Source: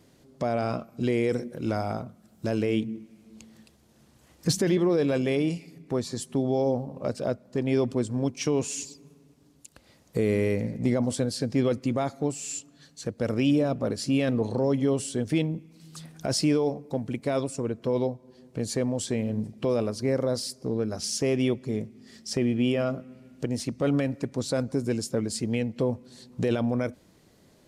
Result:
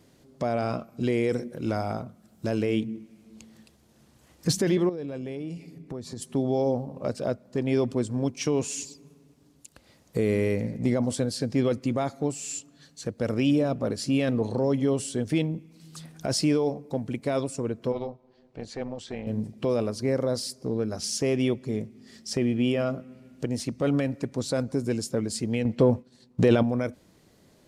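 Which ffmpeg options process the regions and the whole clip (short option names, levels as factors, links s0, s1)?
-filter_complex "[0:a]asettb=1/sr,asplit=3[s0][s1][s2];[s0]atrim=end=4.894[s3];[s1]atrim=start=4.89:end=6.22,asetpts=PTS-STARTPTS,afade=t=in:d=0.004:c=qsin,afade=t=out:st=1.326:d=0.004:c=qsin,tiltshelf=f=650:g=3.5,acompressor=threshold=0.0224:ratio=4:attack=3.2:release=140:knee=1:detection=peak[s4];[s2]atrim=start=6.216[s5];[s3][s4]acrossfade=d=0.004:c1=hsin:c2=qsin[s6];[s6][s5]acrossfade=d=0.004:c1=qsin:c2=hsin,asettb=1/sr,asplit=3[s7][s8][s9];[s7]atrim=end=17.924[s10];[s8]atrim=start=17.92:end=19.27,asetpts=PTS-STARTPTS,afade=t=in:d=0.004:c=qsin,afade=t=out:st=1.346:d=0.004:c=qsin,lowpass=3900,lowshelf=f=370:g=-8,tremolo=f=270:d=0.667[s11];[s9]atrim=start=19.266[s12];[s10][s11]acrossfade=d=0.004:c1=hsin:c2=qsin[s13];[s13][s12]acrossfade=d=0.004:c1=qsin:c2=hsin,asettb=1/sr,asplit=3[s14][s15][s16];[s14]atrim=end=25.654[s17];[s15]atrim=start=25.65:end=26.63,asetpts=PTS-STARTPTS,afade=t=in:d=0.004:c=qsin,afade=t=out:st=0.976:d=0.004:c=qsin,highshelf=f=5500:g=-6.5,acontrast=64,agate=range=0.0224:threshold=0.0178:ratio=3:release=100:detection=peak[s18];[s16]atrim=start=26.626[s19];[s17][s18]acrossfade=d=0.004:c1=hsin:c2=qsin[s20];[s20][s19]acrossfade=d=0.004:c1=qsin:c2=hsin"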